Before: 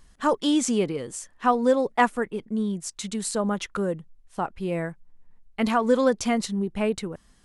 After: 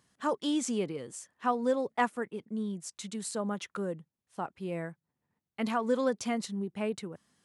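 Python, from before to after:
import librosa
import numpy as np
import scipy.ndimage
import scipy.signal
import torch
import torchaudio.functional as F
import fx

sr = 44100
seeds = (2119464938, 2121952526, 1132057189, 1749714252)

y = scipy.signal.sosfilt(scipy.signal.butter(4, 99.0, 'highpass', fs=sr, output='sos'), x)
y = y * librosa.db_to_amplitude(-8.0)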